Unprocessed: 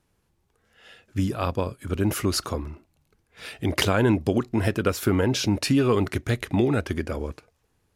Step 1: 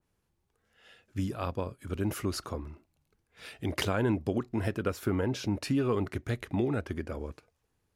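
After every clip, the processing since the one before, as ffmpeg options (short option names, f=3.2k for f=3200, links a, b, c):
-af "adynamicequalizer=threshold=0.00891:dfrequency=2200:dqfactor=0.7:tfrequency=2200:tqfactor=0.7:attack=5:release=100:ratio=0.375:range=3.5:mode=cutabove:tftype=highshelf,volume=-7.5dB"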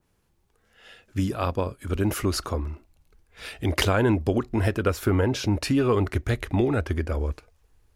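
-af "asubboost=boost=8:cutoff=53,volume=8dB"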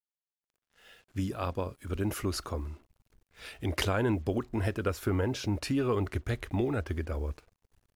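-af "acrusher=bits=8:mix=0:aa=0.5,volume=-7dB"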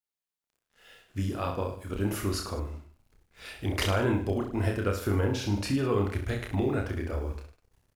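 -af "aecho=1:1:30|64.5|104.2|149.8|202.3:0.631|0.398|0.251|0.158|0.1"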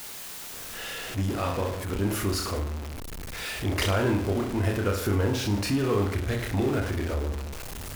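-af "aeval=exprs='val(0)+0.5*0.0299*sgn(val(0))':c=same"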